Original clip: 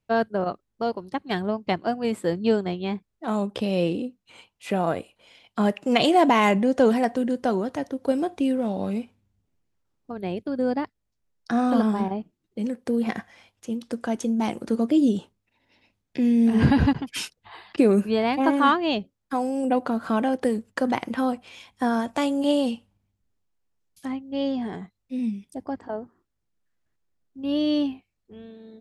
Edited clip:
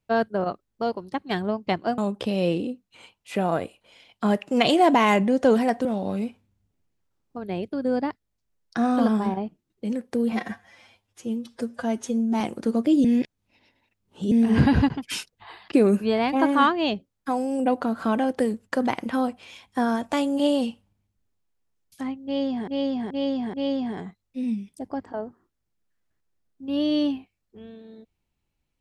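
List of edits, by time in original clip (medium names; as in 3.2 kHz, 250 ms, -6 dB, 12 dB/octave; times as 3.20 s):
1.98–3.33 s: delete
7.20–8.59 s: delete
13.06–14.45 s: stretch 1.5×
15.09–16.36 s: reverse
24.29–24.72 s: loop, 4 plays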